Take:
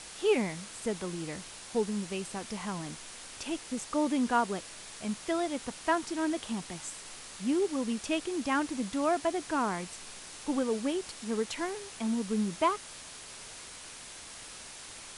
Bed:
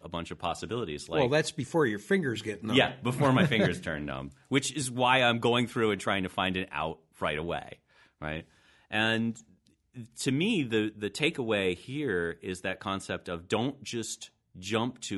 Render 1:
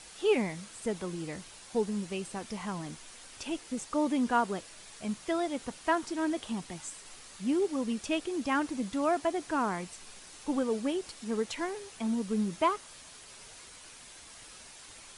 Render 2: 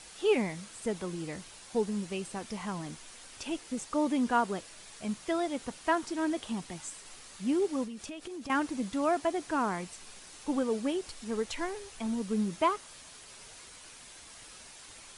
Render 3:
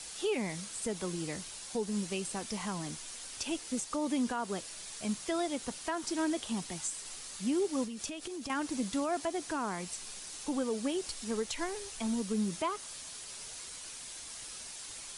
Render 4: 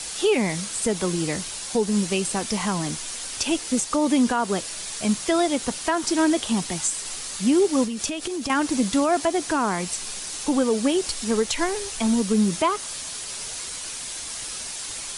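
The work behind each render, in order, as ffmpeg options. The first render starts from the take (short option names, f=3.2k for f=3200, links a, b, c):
-af "afftdn=nr=6:nf=-47"
-filter_complex "[0:a]asettb=1/sr,asplit=3[a][b][c];[a]atrim=end=7.844[d];[b]atrim=start=7.84:end=8.5,asetpts=PTS-STARTPTS,afade=t=in:d=0.004:c=qsin,afade=t=out:st=0.656:d=0.004:c=qsin,acompressor=threshold=-38dB:ratio=10:attack=3.2:release=140:knee=1:detection=peak[e];[c]atrim=start=8.496[f];[d][e]acrossfade=d=0.004:c1=hsin:c2=qsin[g];[g][f]acrossfade=d=0.004:c1=qsin:c2=hsin,asplit=3[h][i][j];[h]afade=t=out:st=11.07:d=0.02[k];[i]asubboost=boost=3.5:cutoff=74,afade=t=in:st=11.07:d=0.02,afade=t=out:st=12.2:d=0.02[l];[j]afade=t=in:st=12.2:d=0.02[m];[k][l][m]amix=inputs=3:normalize=0"
-filter_complex "[0:a]acrossover=split=150|870|3700[a][b][c][d];[d]acontrast=83[e];[a][b][c][e]amix=inputs=4:normalize=0,alimiter=limit=-24dB:level=0:latency=1:release=157"
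-af "volume=12dB"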